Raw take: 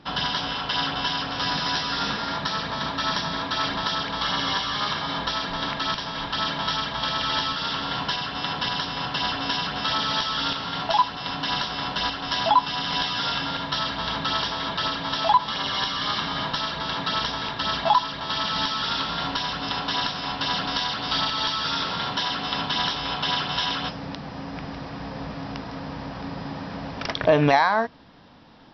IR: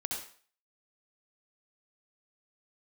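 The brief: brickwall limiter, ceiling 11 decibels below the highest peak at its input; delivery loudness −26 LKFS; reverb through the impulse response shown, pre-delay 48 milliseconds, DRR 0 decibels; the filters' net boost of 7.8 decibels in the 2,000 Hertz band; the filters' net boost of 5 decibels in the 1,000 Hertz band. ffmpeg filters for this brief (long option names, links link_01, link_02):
-filter_complex "[0:a]equalizer=frequency=1000:width_type=o:gain=3.5,equalizer=frequency=2000:width_type=o:gain=9,alimiter=limit=-11.5dB:level=0:latency=1,asplit=2[link_01][link_02];[1:a]atrim=start_sample=2205,adelay=48[link_03];[link_02][link_03]afir=irnorm=-1:irlink=0,volume=-2.5dB[link_04];[link_01][link_04]amix=inputs=2:normalize=0,volume=-7dB"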